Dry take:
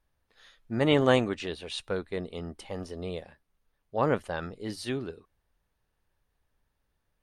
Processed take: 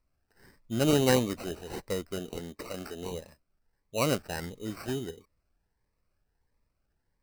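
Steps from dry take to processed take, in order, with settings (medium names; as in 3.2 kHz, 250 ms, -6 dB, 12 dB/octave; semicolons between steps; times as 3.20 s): 2.19–3.13 s: frequency weighting D; sample-and-hold 13×; Shepard-style phaser rising 1.5 Hz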